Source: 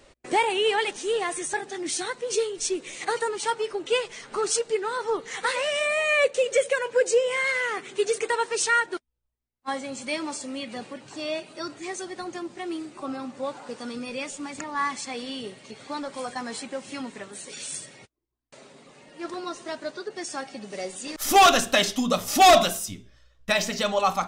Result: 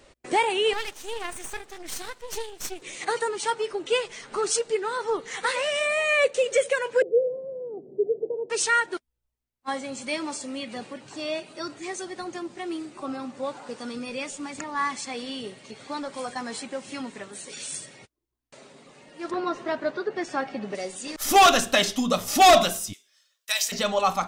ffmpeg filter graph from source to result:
-filter_complex "[0:a]asettb=1/sr,asplit=3[a][b][c];[a]atrim=end=0.734[d];[b]atrim=start=0.73:end=2.82,asetpts=PTS-STARTPTS,afade=t=in:d=0.004:c=qsin,afade=t=out:st=2.086:d=0.004:c=qsin,highpass=f=490:p=1,aeval=exprs='max(val(0),0)':c=same,tremolo=f=25:d=0.261[e];[c]atrim=start=2.816[f];[d][e]acrossfade=d=0.004:c1=hsin:c2=qsin[g];[g][f]acrossfade=d=0.004:c1=qsin:c2=hsin,asettb=1/sr,asplit=3[h][i][j];[h]atrim=end=7.024[k];[i]atrim=start=7.02:end=8.5,asetpts=PTS-STARTPTS,afade=t=in:d=0.004:c=qsin,afade=t=out:st=1.476:d=0.004:c=qsin,aeval=exprs='val(0)+0.00126*(sin(2*PI*50*n/s)+sin(2*PI*2*50*n/s)/2+sin(2*PI*3*50*n/s)/3+sin(2*PI*4*50*n/s)/4+sin(2*PI*5*50*n/s)/5)':c=same,asuperpass=centerf=270:order=12:qfactor=0.52[l];[j]atrim=start=8.496[m];[k][l]acrossfade=d=0.004:c1=hsin:c2=qsin[n];[n][m]acrossfade=d=0.004:c1=qsin:c2=hsin,asettb=1/sr,asplit=3[o][p][q];[o]atrim=end=19.314[r];[p]atrim=start=19.31:end=20.75,asetpts=PTS-STARTPTS,afade=t=in:d=0.004:c=qsin,afade=t=out:st=1.436:d=0.004:c=qsin,lowpass=2k,aemphasis=mode=production:type=50kf,acontrast=47[s];[q]atrim=start=20.746[t];[r][s]acrossfade=d=0.004:c1=hsin:c2=qsin[u];[u][t]acrossfade=d=0.004:c1=qsin:c2=hsin,asettb=1/sr,asplit=3[v][w][x];[v]atrim=end=22.934[y];[w]atrim=start=22.93:end=23.72,asetpts=PTS-STARTPTS,afade=t=in:d=0.004:c=qsin,afade=t=out:st=0.786:d=0.004:c=qsin,highpass=390,aderivative,acontrast=71[z];[x]atrim=start=23.716[aa];[y][z]acrossfade=d=0.004:c1=hsin:c2=qsin[ab];[ab][aa]acrossfade=d=0.004:c1=qsin:c2=hsin"

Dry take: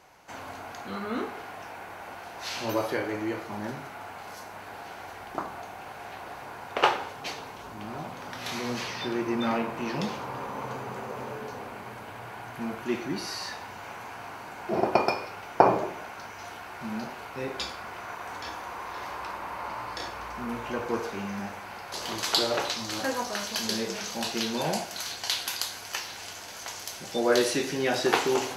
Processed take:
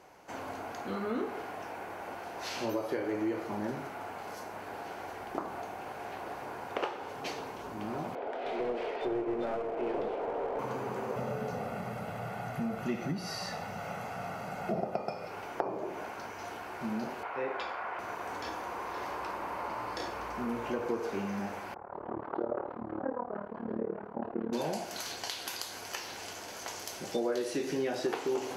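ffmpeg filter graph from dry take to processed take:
-filter_complex "[0:a]asettb=1/sr,asplit=3[a][b][c];[a]atrim=end=8.154[d];[b]atrim=start=8.15:end=10.59,asetpts=PTS-STARTPTS,afade=t=in:d=0.004:c=qsin,afade=t=out:st=2.436:d=0.004:c=qsin,highpass=f=310:w=0.5412,highpass=f=310:w=1.3066,equalizer=f=440:t=q:w=4:g=8,equalizer=f=670:t=q:w=4:g=9,equalizer=f=1.1k:t=q:w=4:g=-7,equalizer=f=1.8k:t=q:w=4:g=-5,equalizer=f=2.7k:t=q:w=4:g=-4,lowpass=f=3k:w=0.5412,lowpass=f=3k:w=1.3066,aeval=exprs='clip(val(0),-1,0.0224)':c=same[e];[c]atrim=start=10.586[f];[d][e]acrossfade=d=0.004:c1=hsin:c2=qsin[g];[g][f]acrossfade=d=0.004:c1=qsin:c2=hsin,asettb=1/sr,asplit=3[h][i][j];[h]atrim=end=11.164[k];[i]atrim=start=11.16:end=15.28,asetpts=PTS-STARTPTS,afade=t=in:d=0.004:c=qsin,afade=t=out:st=4.116:d=0.004:c=qsin,equalizer=f=170:w=2:g=12.5,aecho=1:1:1.5:0.63,atrim=end_sample=181692[l];[j]atrim=start=15.276[m];[k][l]acrossfade=d=0.004:c1=hsin:c2=qsin[n];[n][m]acrossfade=d=0.004:c1=qsin:c2=hsin,asettb=1/sr,asplit=3[o][p][q];[o]atrim=end=17.234[r];[p]atrim=start=17.23:end=17.99,asetpts=PTS-STARTPTS,afade=t=in:d=0.004:c=qsin,afade=t=out:st=0.756:d=0.004:c=qsin,acrossover=split=540 2700:gain=0.158 1 0.0891[s][t][u];[s][t][u]amix=inputs=3:normalize=0,acontrast=37[v];[q]atrim=start=17.986[w];[r][v]acrossfade=d=0.004:c1=hsin:c2=qsin[x];[x][w]acrossfade=d=0.004:c1=qsin:c2=hsin,asettb=1/sr,asplit=3[y][z][aa];[y]atrim=end=21.744[ab];[z]atrim=start=21.74:end=24.53,asetpts=PTS-STARTPTS,afade=t=in:d=0.004:c=qsin,afade=t=out:st=2.786:d=0.004:c=qsin,lowpass=f=1.3k:w=0.5412,lowpass=f=1.3k:w=1.3066,tremolo=f=37:d=0.919[ac];[aa]atrim=start=24.526[ad];[ab][ac]acrossfade=d=0.004:c1=hsin:c2=qsin[ae];[ae][ad]acrossfade=d=0.004:c1=qsin:c2=hsin,equalizer=f=3.8k:w=4.6:g=-2.5,acompressor=threshold=-31dB:ratio=10,equalizer=f=380:w=0.67:g=7.5,volume=-3.5dB"

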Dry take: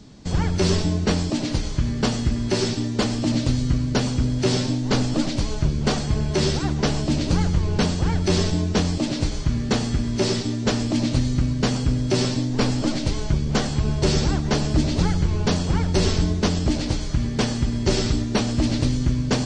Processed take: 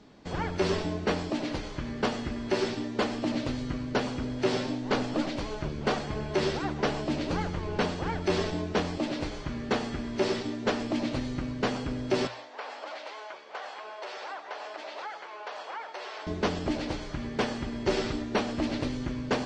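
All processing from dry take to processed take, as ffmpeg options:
-filter_complex "[0:a]asettb=1/sr,asplit=3[a][b][c];[a]atrim=end=12.274[d];[b]atrim=start=12.27:end=16.27,asetpts=PTS-STARTPTS,afade=t=in:d=0.004:c=qsin,afade=t=out:st=3.996:d=0.004:c=qsin,highpass=f=650:w=0.5412,highpass=f=650:w=1.3066,aemphasis=mode=reproduction:type=bsi,acompressor=threshold=-31dB:ratio=6:attack=3.2:release=140:knee=1:detection=peak[e];[c]atrim=start=16.266[f];[d][e]acrossfade=d=0.004:c1=hsin:c2=qsin[g];[g][f]acrossfade=d=0.004:c1=qsin:c2=hsin,bass=f=250:g=-13,treble=f=4k:g=-15,bandreject=f=60:t=h:w=6,bandreject=f=120:t=h:w=6,volume=-1.5dB"

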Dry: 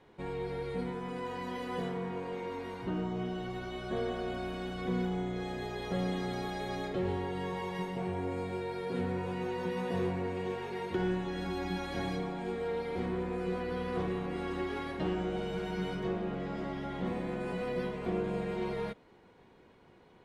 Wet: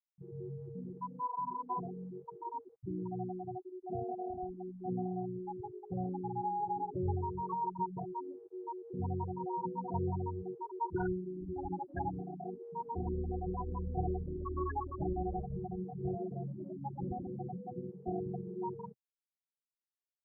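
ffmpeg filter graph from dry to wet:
-filter_complex "[0:a]asettb=1/sr,asplit=3[a][b][c];[a]atrim=end=8.044[d];[b]atrim=start=8.04:end=8.94,asetpts=PTS-STARTPTS,afade=t=in:d=0.004:c=qsin,afade=t=out:st=0.896:d=0.004:c=qsin,highpass=f=190:w=0.5412,highpass=f=190:w=1.3066,bandreject=f=50:t=h:w=6,bandreject=f=100:t=h:w=6,bandreject=f=150:t=h:w=6,bandreject=f=200:t=h:w=6,bandreject=f=250:t=h:w=6,bandreject=f=300:t=h:w=6,bandreject=f=350:t=h:w=6,bandreject=f=400:t=h:w=6,asoftclip=type=hard:threshold=-34.5dB[e];[c]atrim=start=8.936[f];[d][e]acrossfade=d=0.004:c1=hsin:c2=qsin[g];[g][f]acrossfade=d=0.004:c1=qsin:c2=hsin,asettb=1/sr,asplit=3[h][i][j];[h]atrim=end=12.294[k];[i]atrim=start=12.29:end=17.72,asetpts=PTS-STARTPTS,afade=t=in:d=0.004:c=qsin,afade=t=out:st=5.426:d=0.004:c=qsin,aemphasis=mode=reproduction:type=50fm,aecho=1:1:102|204|306|408|510|612:0.355|0.181|0.0923|0.0471|0.024|0.0122,atrim=end_sample=239463[l];[j]atrim=start=17.716[m];[k][l]acrossfade=d=0.004:c1=hsin:c2=qsin[n];[n][m]acrossfade=d=0.004:c1=qsin:c2=hsin,afftfilt=real='re*gte(hypot(re,im),0.0631)':imag='im*gte(hypot(re,im),0.0631)':win_size=1024:overlap=0.75,firequalizer=gain_entry='entry(130,0);entry(220,-16);entry(350,-6);entry(510,-21);entry(770,5)':delay=0.05:min_phase=1,volume=5dB"

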